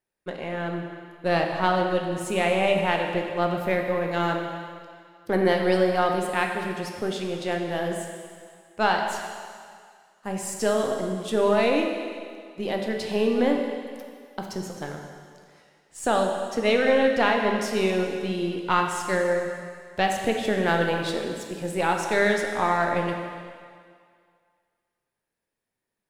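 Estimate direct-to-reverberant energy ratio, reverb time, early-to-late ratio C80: 2.0 dB, 2.0 s, 5.0 dB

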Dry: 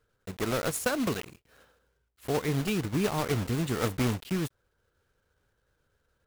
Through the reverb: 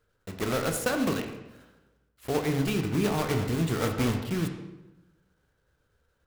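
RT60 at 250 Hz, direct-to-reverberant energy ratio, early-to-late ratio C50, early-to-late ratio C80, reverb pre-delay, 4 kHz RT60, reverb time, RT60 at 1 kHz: 1.2 s, 4.0 dB, 7.0 dB, 9.0 dB, 12 ms, 0.75 s, 1.0 s, 0.95 s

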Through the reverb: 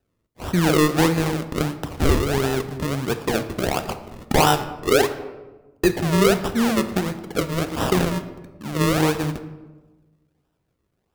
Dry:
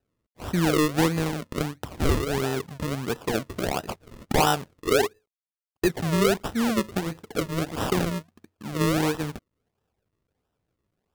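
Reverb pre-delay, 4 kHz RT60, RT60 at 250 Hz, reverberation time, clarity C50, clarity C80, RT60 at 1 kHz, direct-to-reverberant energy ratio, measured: 6 ms, 0.70 s, 1.5 s, 1.2 s, 12.0 dB, 14.0 dB, 1.1 s, 9.0 dB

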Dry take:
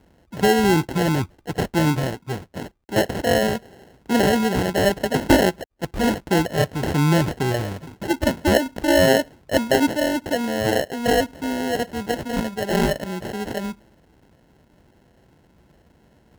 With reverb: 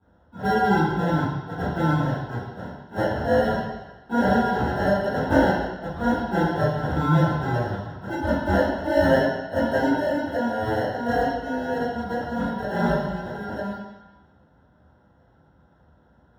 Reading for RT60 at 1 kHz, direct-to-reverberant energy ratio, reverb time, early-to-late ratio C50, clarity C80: 1.1 s, -14.0 dB, 1.1 s, 0.5 dB, 3.0 dB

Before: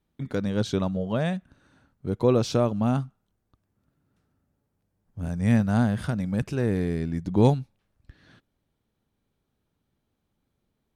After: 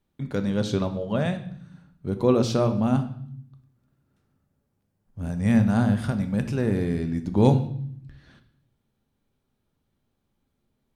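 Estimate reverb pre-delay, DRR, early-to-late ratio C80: 4 ms, 7.0 dB, 15.0 dB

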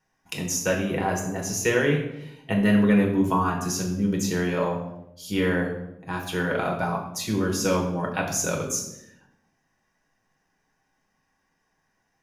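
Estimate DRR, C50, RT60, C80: -1.0 dB, 6.5 dB, 0.85 s, 9.0 dB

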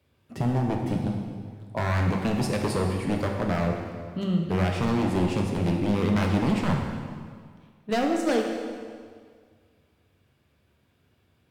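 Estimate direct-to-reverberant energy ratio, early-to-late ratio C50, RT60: 1.0 dB, 3.0 dB, 1.9 s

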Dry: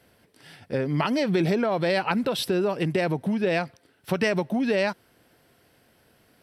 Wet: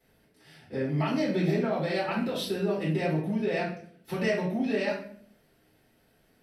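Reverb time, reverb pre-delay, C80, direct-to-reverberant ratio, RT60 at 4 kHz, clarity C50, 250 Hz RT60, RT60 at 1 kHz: 0.55 s, 3 ms, 9.0 dB, -8.5 dB, 0.45 s, 5.0 dB, 0.85 s, 0.45 s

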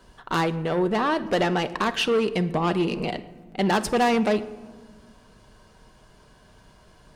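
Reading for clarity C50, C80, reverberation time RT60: 15.5 dB, 17.0 dB, 1.4 s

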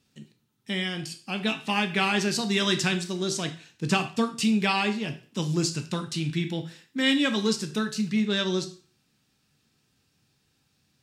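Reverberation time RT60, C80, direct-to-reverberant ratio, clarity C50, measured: 0.45 s, 17.0 dB, 7.0 dB, 12.5 dB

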